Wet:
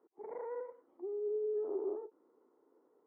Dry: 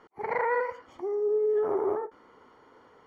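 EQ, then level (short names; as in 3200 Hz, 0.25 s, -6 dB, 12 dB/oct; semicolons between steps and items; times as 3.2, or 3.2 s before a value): ladder band-pass 390 Hz, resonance 50%; -2.5 dB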